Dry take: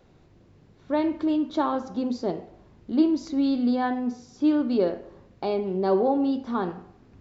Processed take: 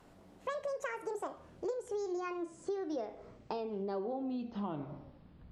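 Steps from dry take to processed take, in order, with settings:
gliding playback speed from 197% → 64%
downward compressor 6 to 1, threshold −32 dBFS, peak gain reduction 15.5 dB
level −3.5 dB

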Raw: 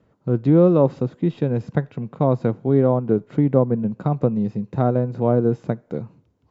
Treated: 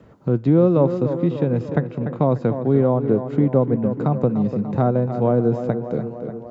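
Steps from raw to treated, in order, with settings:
tape delay 295 ms, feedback 59%, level −9 dB, low-pass 2,500 Hz
multiband upward and downward compressor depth 40%

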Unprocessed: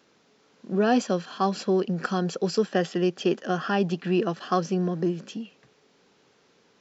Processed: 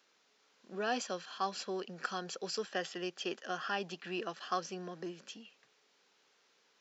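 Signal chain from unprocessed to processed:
high-pass filter 1,300 Hz 6 dB per octave
level −4.5 dB

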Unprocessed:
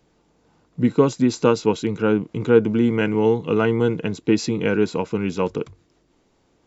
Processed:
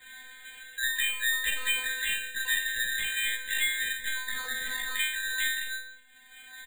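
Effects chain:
band-splitting scrambler in four parts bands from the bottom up 3142
low-shelf EQ 200 Hz +11 dB
comb filter 5.8 ms, depth 30%
0:01.47–0:03.12: bass and treble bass +2 dB, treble +14 dB
0:04.17–0:04.93: tube saturation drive 21 dB, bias 0.3
mains-hum notches 50/100/150/200/250/300/350/400/450/500 Hz
stiff-string resonator 250 Hz, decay 0.57 s, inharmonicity 0.002
rectangular room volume 180 cubic metres, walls furnished, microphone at 0.46 metres
in parallel at −7 dB: gain into a clipping stage and back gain 35.5 dB
on the sum: bad sample-rate conversion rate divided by 8×, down filtered, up hold
single-tap delay 143 ms −21 dB
multiband upward and downward compressor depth 70%
level +6.5 dB

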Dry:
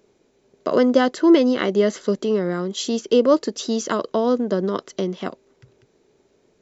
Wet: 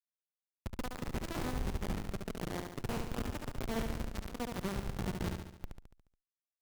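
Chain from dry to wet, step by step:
time-frequency cells dropped at random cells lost 35%
drawn EQ curve 110 Hz 0 dB, 170 Hz −2 dB, 660 Hz −25 dB, 1,100 Hz −23 dB, 2,200 Hz +15 dB, 4,200 Hz −4 dB, 6,200 Hz +1 dB
reversed playback
downward compressor 10 to 1, threshold −39 dBFS, peak gain reduction 20 dB
reversed playback
comparator with hysteresis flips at −39.5 dBFS
on a send: repeating echo 71 ms, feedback 54%, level −5 dB
on the sum: windowed peak hold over 65 samples
level +11 dB

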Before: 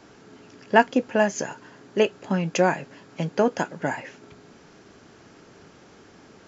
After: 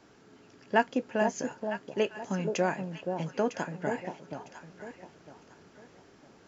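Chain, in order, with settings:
delay that swaps between a low-pass and a high-pass 477 ms, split 930 Hz, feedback 52%, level −5 dB
level −8 dB

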